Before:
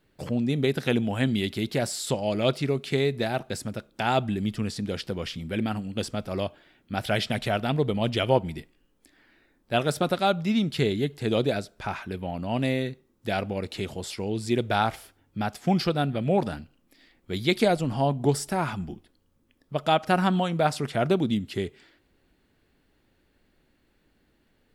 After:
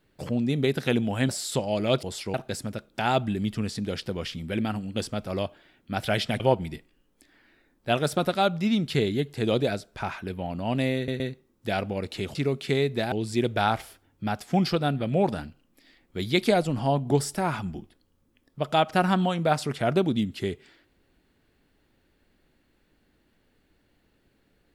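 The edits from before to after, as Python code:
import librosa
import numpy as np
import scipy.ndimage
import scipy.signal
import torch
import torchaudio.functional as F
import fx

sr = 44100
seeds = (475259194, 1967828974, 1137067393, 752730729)

y = fx.edit(x, sr, fx.cut(start_s=1.29, length_s=0.55),
    fx.swap(start_s=2.58, length_s=0.77, other_s=13.95, other_length_s=0.31),
    fx.cut(start_s=7.41, length_s=0.83),
    fx.stutter(start_s=12.8, slice_s=0.12, count=3), tone=tone)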